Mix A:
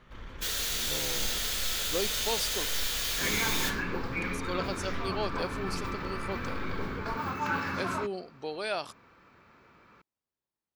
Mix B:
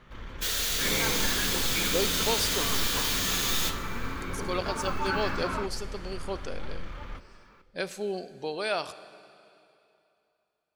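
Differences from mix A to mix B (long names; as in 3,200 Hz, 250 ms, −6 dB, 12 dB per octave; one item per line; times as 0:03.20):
second sound: entry −2.40 s
reverb: on, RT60 2.8 s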